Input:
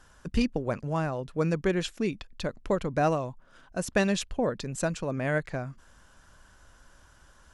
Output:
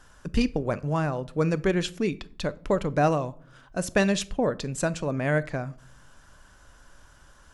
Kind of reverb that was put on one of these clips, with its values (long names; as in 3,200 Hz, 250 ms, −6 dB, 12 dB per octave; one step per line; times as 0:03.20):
rectangular room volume 600 cubic metres, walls furnished, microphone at 0.35 metres
level +2.5 dB